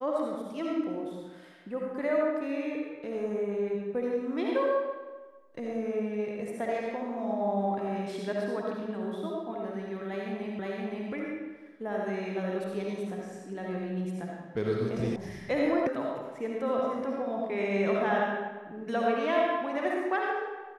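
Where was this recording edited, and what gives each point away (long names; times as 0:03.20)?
0:10.59: the same again, the last 0.52 s
0:15.16: cut off before it has died away
0:15.87: cut off before it has died away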